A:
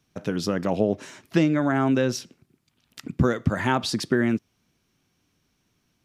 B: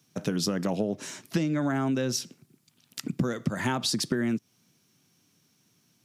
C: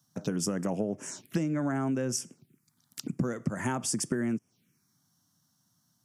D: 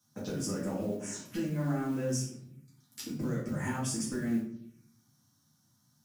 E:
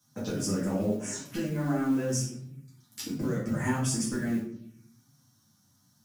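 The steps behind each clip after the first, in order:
high-pass 120 Hz 24 dB/octave; tone controls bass +5 dB, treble +9 dB; compression 6:1, threshold -24 dBFS, peak gain reduction 11 dB
dynamic bell 8.4 kHz, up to +7 dB, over -47 dBFS, Q 0.89; touch-sensitive phaser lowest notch 400 Hz, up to 4 kHz, full sweep at -30 dBFS; trim -2.5 dB
compression 2:1, threshold -37 dBFS, peak gain reduction 8 dB; modulation noise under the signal 25 dB; reverberation RT60 0.60 s, pre-delay 4 ms, DRR -8 dB; trim -6.5 dB
flange 0.78 Hz, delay 6.9 ms, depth 4.4 ms, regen +40%; trim +8 dB

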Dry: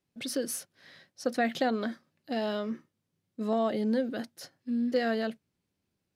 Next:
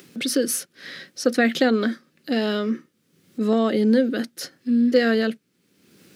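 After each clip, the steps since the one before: high-order bell 790 Hz -8.5 dB 1 oct; in parallel at +2.5 dB: upward compressor, threshold -34 dBFS; on the sum: Chebyshev high-pass 220 Hz, order 2; trim +4 dB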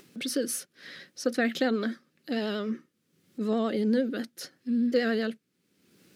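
vibrato 11 Hz 49 cents; trim -7.5 dB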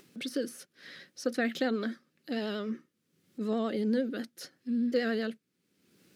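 de-esser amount 75%; trim -3.5 dB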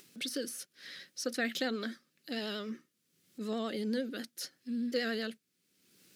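treble shelf 2.2 kHz +11.5 dB; trim -5.5 dB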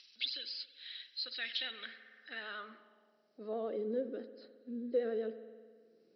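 knee-point frequency compression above 3.8 kHz 4:1; spring tank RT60 1.8 s, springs 54 ms, chirp 45 ms, DRR 12 dB; band-pass sweep 3.2 kHz -> 440 Hz, 1.55–3.86 s; trim +3.5 dB

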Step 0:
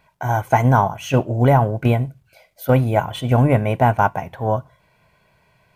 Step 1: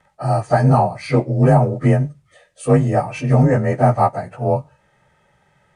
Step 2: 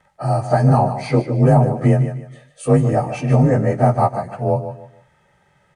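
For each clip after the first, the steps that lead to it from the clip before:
frequency axis rescaled in octaves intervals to 90%; trim +3 dB
on a send: feedback delay 150 ms, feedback 28%, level -11 dB; on the sum: dynamic bell 1.9 kHz, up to -4 dB, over -29 dBFS, Q 0.72

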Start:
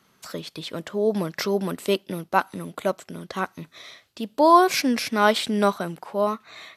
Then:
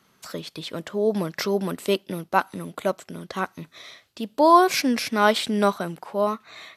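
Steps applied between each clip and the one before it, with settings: no audible change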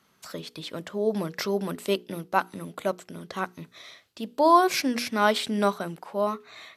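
hum notches 60/120/180/240/300/360/420/480 Hz; trim -3 dB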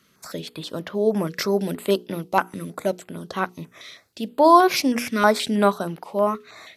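step-sequenced notch 6.3 Hz 830–7900 Hz; trim +5.5 dB

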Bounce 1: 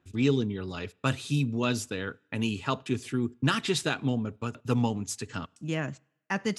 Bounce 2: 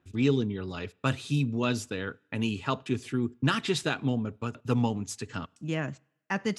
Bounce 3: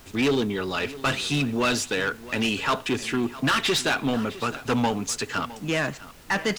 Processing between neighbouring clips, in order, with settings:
treble shelf 6.1 kHz -5.5 dB
overdrive pedal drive 25 dB, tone 6.5 kHz, clips at -10 dBFS; added noise pink -46 dBFS; delay 660 ms -17 dB; trim -3.5 dB

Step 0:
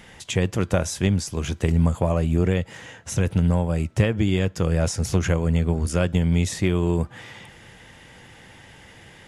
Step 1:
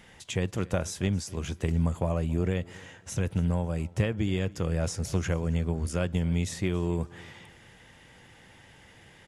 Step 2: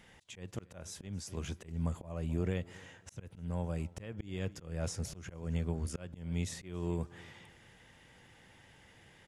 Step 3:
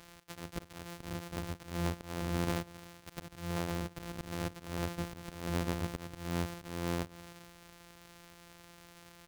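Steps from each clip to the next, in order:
feedback delay 275 ms, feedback 29%, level -22 dB; trim -7 dB
slow attack 263 ms; trim -6 dB
sorted samples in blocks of 256 samples; tape noise reduction on one side only encoder only

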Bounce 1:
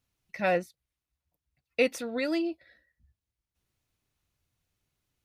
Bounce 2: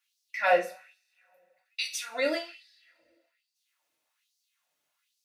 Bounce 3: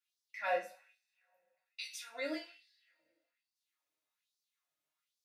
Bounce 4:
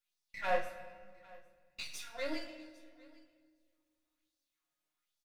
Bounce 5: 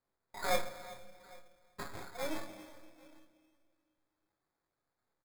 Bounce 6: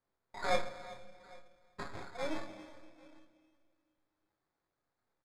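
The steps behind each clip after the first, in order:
peaking EQ 400 Hz -14.5 dB 0.52 oct; two-slope reverb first 0.31 s, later 2.1 s, from -27 dB, DRR -1 dB; LFO high-pass sine 1.2 Hz 400–5000 Hz
chord resonator G#2 sus4, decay 0.2 s
partial rectifier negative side -7 dB; delay 803 ms -23.5 dB; simulated room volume 2600 m³, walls mixed, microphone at 0.94 m; trim +2 dB
sample-rate reducer 2.9 kHz, jitter 0%; doubling 24 ms -13 dB; delay 378 ms -19 dB
distance through air 80 m; trim +1 dB

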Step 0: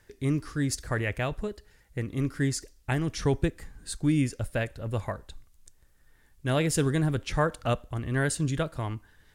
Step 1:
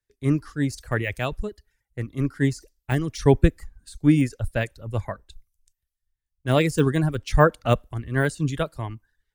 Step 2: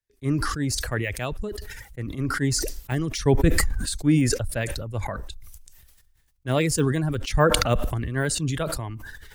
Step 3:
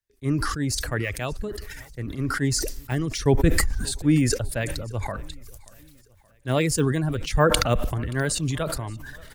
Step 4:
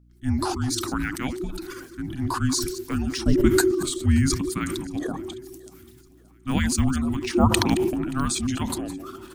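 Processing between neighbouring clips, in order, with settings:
de-esser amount 95%; reverb removal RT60 0.65 s; three bands expanded up and down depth 100%; trim +5 dB
decay stretcher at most 30 dB/s; trim -3.5 dB
feedback delay 578 ms, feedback 49%, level -24 dB
chunks repeated in reverse 116 ms, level -13 dB; frequency shift -390 Hz; hum 60 Hz, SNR 31 dB

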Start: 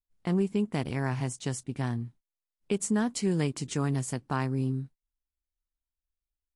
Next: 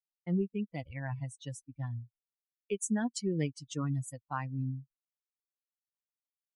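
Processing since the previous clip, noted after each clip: expander on every frequency bin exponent 3; expander -55 dBFS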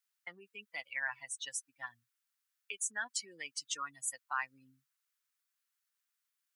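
treble shelf 4.2 kHz +5.5 dB; peak limiter -30 dBFS, peak gain reduction 11 dB; resonant high-pass 1.4 kHz, resonance Q 2.1; trim +5.5 dB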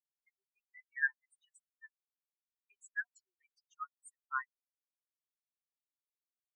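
spectral contrast expander 4:1; trim +2 dB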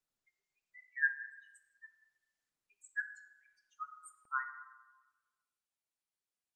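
plate-style reverb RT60 1.2 s, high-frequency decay 0.5×, DRR 7 dB; Opus 20 kbps 48 kHz

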